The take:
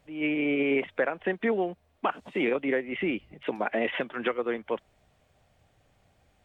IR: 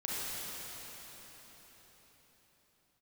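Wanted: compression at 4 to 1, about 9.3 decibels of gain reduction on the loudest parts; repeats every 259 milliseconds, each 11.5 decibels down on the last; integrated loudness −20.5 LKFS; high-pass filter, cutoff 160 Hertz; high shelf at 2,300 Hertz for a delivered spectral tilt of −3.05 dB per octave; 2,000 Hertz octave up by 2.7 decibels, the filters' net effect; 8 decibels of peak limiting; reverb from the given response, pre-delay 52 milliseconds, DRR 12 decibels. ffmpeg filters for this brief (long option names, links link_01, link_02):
-filter_complex "[0:a]highpass=160,equalizer=frequency=2000:width_type=o:gain=7.5,highshelf=frequency=2300:gain=-8.5,acompressor=threshold=-33dB:ratio=4,alimiter=level_in=4dB:limit=-24dB:level=0:latency=1,volume=-4dB,aecho=1:1:259|518|777:0.266|0.0718|0.0194,asplit=2[link_01][link_02];[1:a]atrim=start_sample=2205,adelay=52[link_03];[link_02][link_03]afir=irnorm=-1:irlink=0,volume=-17.5dB[link_04];[link_01][link_04]amix=inputs=2:normalize=0,volume=17dB"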